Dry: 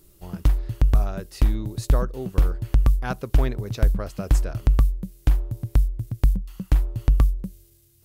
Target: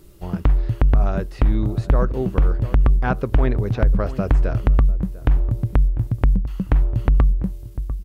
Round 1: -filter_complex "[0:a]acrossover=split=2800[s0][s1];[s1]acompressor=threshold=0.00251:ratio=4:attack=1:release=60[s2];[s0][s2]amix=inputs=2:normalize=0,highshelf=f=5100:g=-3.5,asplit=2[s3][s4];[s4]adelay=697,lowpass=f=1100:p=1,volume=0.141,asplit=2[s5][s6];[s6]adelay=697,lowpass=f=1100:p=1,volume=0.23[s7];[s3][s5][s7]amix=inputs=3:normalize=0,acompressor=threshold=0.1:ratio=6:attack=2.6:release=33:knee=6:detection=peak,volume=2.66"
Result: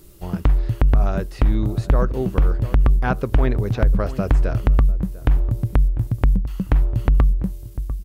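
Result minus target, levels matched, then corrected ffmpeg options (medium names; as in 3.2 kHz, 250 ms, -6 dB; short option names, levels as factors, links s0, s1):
8 kHz band +5.0 dB
-filter_complex "[0:a]acrossover=split=2800[s0][s1];[s1]acompressor=threshold=0.00251:ratio=4:attack=1:release=60[s2];[s0][s2]amix=inputs=2:normalize=0,highshelf=f=5100:g=-10.5,asplit=2[s3][s4];[s4]adelay=697,lowpass=f=1100:p=1,volume=0.141,asplit=2[s5][s6];[s6]adelay=697,lowpass=f=1100:p=1,volume=0.23[s7];[s3][s5][s7]amix=inputs=3:normalize=0,acompressor=threshold=0.1:ratio=6:attack=2.6:release=33:knee=6:detection=peak,volume=2.66"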